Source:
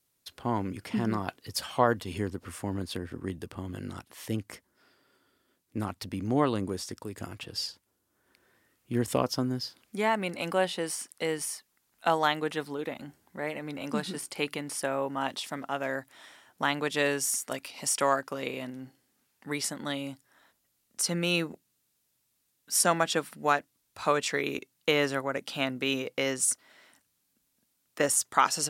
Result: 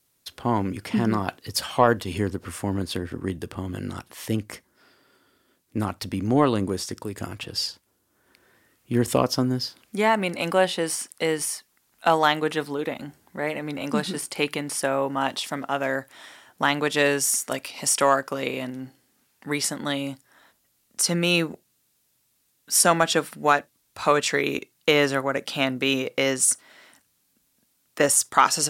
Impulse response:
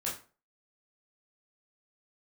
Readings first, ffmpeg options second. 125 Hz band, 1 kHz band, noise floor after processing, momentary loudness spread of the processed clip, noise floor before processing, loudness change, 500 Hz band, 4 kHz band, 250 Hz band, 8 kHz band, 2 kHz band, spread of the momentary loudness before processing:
+6.5 dB, +6.0 dB, −69 dBFS, 12 LU, −75 dBFS, +6.0 dB, +6.5 dB, +6.5 dB, +6.5 dB, +6.5 dB, +6.0 dB, 13 LU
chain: -filter_complex "[0:a]acontrast=56,asplit=2[link_01][link_02];[1:a]atrim=start_sample=2205,atrim=end_sample=3969[link_03];[link_02][link_03]afir=irnorm=-1:irlink=0,volume=-25dB[link_04];[link_01][link_04]amix=inputs=2:normalize=0"

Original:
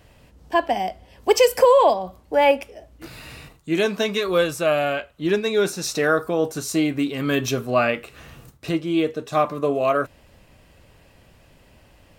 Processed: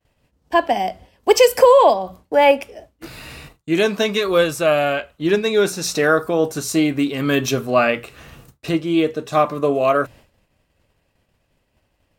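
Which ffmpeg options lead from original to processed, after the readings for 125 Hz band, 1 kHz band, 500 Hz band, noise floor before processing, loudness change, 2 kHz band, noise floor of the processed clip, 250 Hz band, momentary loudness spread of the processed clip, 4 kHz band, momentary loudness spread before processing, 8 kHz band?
+3.0 dB, +3.5 dB, +3.5 dB, −54 dBFS, +3.5 dB, +3.5 dB, −68 dBFS, +3.5 dB, 12 LU, +3.5 dB, 13 LU, +3.5 dB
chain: -af "bandreject=frequency=60:width_type=h:width=6,bandreject=frequency=120:width_type=h:width=6,bandreject=frequency=180:width_type=h:width=6,agate=range=-33dB:threshold=-41dB:ratio=3:detection=peak,volume=3.5dB"

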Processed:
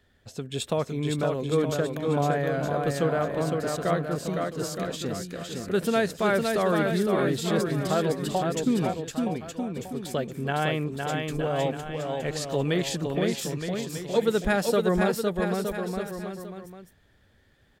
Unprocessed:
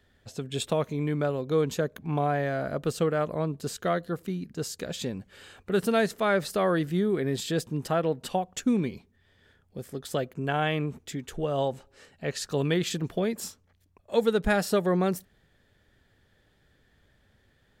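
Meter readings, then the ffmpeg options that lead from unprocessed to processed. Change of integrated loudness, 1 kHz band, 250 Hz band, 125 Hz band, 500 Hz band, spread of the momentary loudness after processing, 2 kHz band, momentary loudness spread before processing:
+1.5 dB, +2.0 dB, +2.0 dB, +2.0 dB, +2.0 dB, 9 LU, +2.0 dB, 12 LU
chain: -af "aecho=1:1:510|918|1244|1506|1714:0.631|0.398|0.251|0.158|0.1"

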